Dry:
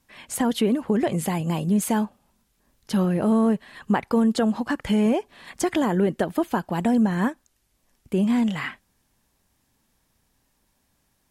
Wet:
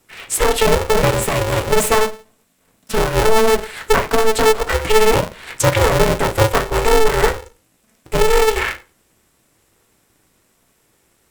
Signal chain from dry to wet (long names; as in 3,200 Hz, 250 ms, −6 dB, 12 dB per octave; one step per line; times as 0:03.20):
0:01.01–0:02.98: lower of the sound and its delayed copy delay 3.4 ms
0:03.49–0:03.93: high-shelf EQ 3,600 Hz +10.5 dB
convolution reverb RT60 0.30 s, pre-delay 3 ms, DRR 1.5 dB
ring modulator with a square carrier 220 Hz
level +8 dB